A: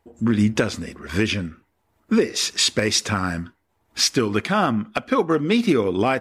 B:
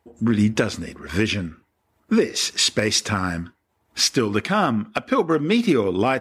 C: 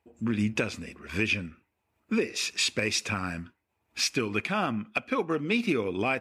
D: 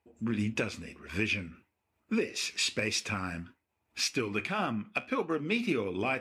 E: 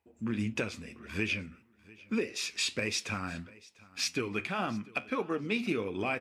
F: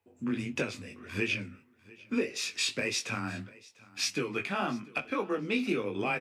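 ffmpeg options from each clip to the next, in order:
-af "highpass=41"
-af "equalizer=f=2.5k:t=o:w=0.26:g=12,volume=-9dB"
-af "flanger=delay=9.5:depth=4.9:regen=-68:speed=1.7:shape=sinusoidal,areverse,acompressor=mode=upward:threshold=-51dB:ratio=2.5,areverse,volume=1dB"
-af "aecho=1:1:696|1392:0.075|0.0157,volume=-1.5dB"
-filter_complex "[0:a]afreqshift=15,asplit=2[a][b];[b]adelay=20,volume=-5dB[c];[a][c]amix=inputs=2:normalize=0"

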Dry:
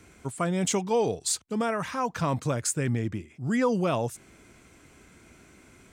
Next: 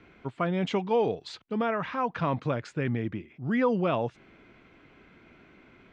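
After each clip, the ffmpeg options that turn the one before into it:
-af "lowpass=f=3.5k:w=0.5412,lowpass=f=3.5k:w=1.3066,equalizer=f=72:w=1.1:g=-8"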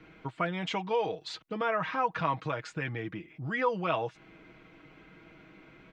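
-filter_complex "[0:a]aecho=1:1:6.3:0.61,acrossover=split=660[a][b];[a]acompressor=threshold=-36dB:ratio=4[c];[c][b]amix=inputs=2:normalize=0"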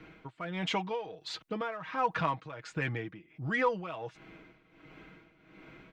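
-filter_complex "[0:a]asplit=2[a][b];[b]asoftclip=type=tanh:threshold=-31.5dB,volume=-9.5dB[c];[a][c]amix=inputs=2:normalize=0,tremolo=f=1.4:d=0.78"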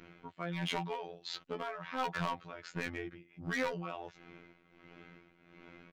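-af "aresample=16000,aresample=44100,asoftclip=type=hard:threshold=-29.5dB,afftfilt=real='hypot(re,im)*cos(PI*b)':imag='0':win_size=2048:overlap=0.75,volume=1dB"

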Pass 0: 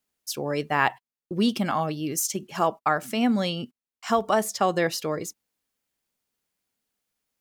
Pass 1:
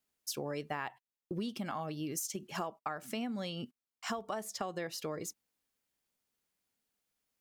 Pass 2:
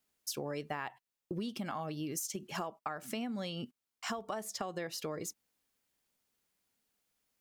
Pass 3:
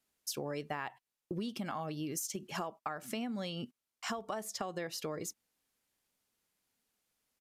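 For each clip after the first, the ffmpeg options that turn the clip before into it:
-af "acompressor=threshold=-31dB:ratio=10,volume=-3.5dB"
-af "acompressor=threshold=-45dB:ratio=1.5,volume=3.5dB"
-af "aresample=32000,aresample=44100"

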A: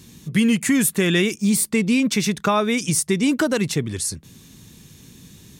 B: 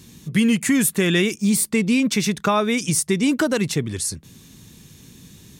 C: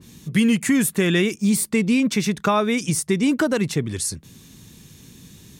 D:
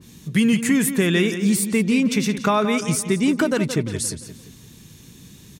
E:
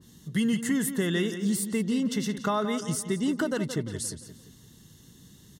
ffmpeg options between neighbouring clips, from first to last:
-af anull
-af "adynamicequalizer=threshold=0.02:dfrequency=2400:dqfactor=0.7:tfrequency=2400:tqfactor=0.7:attack=5:release=100:ratio=0.375:range=2.5:mode=cutabove:tftype=highshelf"
-filter_complex "[0:a]asplit=2[a][b];[b]adelay=173,lowpass=f=4.5k:p=1,volume=-10dB,asplit=2[c][d];[d]adelay=173,lowpass=f=4.5k:p=1,volume=0.45,asplit=2[e][f];[f]adelay=173,lowpass=f=4.5k:p=1,volume=0.45,asplit=2[g][h];[h]adelay=173,lowpass=f=4.5k:p=1,volume=0.45,asplit=2[i][j];[j]adelay=173,lowpass=f=4.5k:p=1,volume=0.45[k];[a][c][e][g][i][k]amix=inputs=6:normalize=0"
-af "asuperstop=centerf=2400:order=8:qfactor=4.7,volume=-8dB"

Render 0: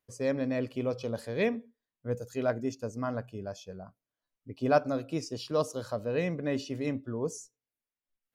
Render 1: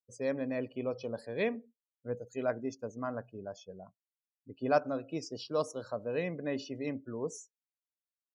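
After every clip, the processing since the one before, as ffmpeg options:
-af "afftdn=nr=26:nf=-49,highpass=f=210:p=1,volume=-2.5dB"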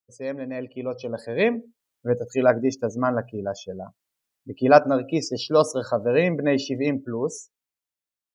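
-af "dynaudnorm=f=210:g=13:m=12dB,volume=2.5dB"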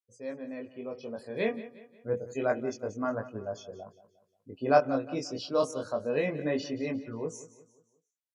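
-af "flanger=delay=18.5:depth=4.3:speed=0.28,aecho=1:1:178|356|534|712:0.158|0.0666|0.028|0.0117,aresample=32000,aresample=44100,volume=-6dB"

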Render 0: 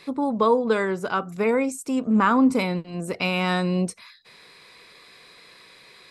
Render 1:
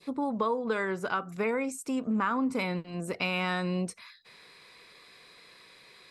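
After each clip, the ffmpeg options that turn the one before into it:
-af "adynamicequalizer=threshold=0.02:dfrequency=1700:dqfactor=0.73:tfrequency=1700:tqfactor=0.73:attack=5:release=100:ratio=0.375:range=2.5:mode=boostabove:tftype=bell,acompressor=threshold=-22dB:ratio=3,volume=-5dB"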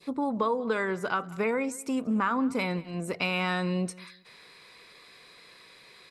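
-af "aecho=1:1:187|374:0.0841|0.0227,volume=1.5dB"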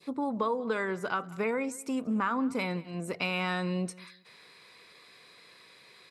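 -af "highpass=70,volume=-2.5dB"

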